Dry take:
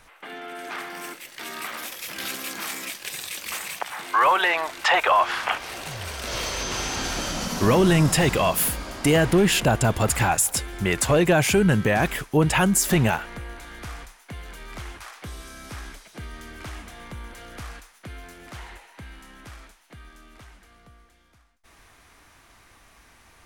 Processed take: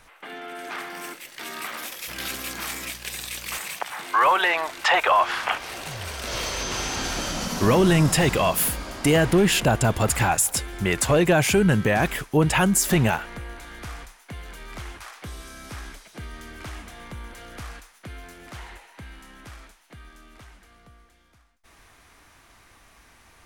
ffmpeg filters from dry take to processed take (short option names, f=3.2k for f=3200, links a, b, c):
-filter_complex "[0:a]asettb=1/sr,asplit=3[a][b][c];[a]atrim=end=2.084[d];[b]atrim=start=2.08:end=3.58,asetpts=PTS-STARTPTS,afade=t=in:d=0.004:c=qsin,afade=t=out:st=1.496:d=0.004:c=qsin,aeval=exprs='val(0)+0.00501*(sin(2*PI*60*n/s)+sin(2*PI*2*60*n/s)/2+sin(2*PI*3*60*n/s)/3+sin(2*PI*4*60*n/s)/4+sin(2*PI*5*60*n/s)/5)':c=same[e];[c]atrim=start=3.576[f];[d][e]acrossfade=d=0.004:c1=hsin:c2=qsin[g];[g][f]acrossfade=d=0.004:c1=qsin:c2=hsin"